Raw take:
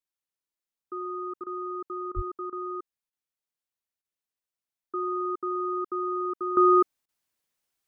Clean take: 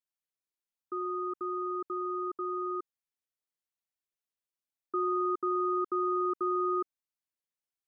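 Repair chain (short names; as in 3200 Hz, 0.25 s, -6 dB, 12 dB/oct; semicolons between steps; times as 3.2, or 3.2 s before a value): de-plosive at 2.15; interpolate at 1.44/2.12/2.5/3.1/4.02/7.06, 25 ms; gain correction -11.5 dB, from 6.57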